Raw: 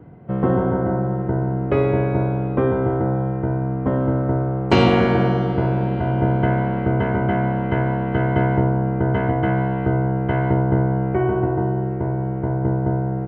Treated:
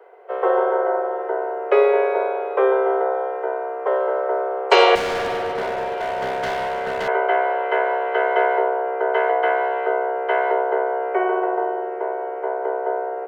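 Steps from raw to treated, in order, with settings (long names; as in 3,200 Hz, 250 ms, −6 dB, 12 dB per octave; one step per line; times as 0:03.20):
Butterworth high-pass 390 Hz 96 dB per octave
0:04.95–0:07.08: hard clipping −27 dBFS, distortion −12 dB
level +5.5 dB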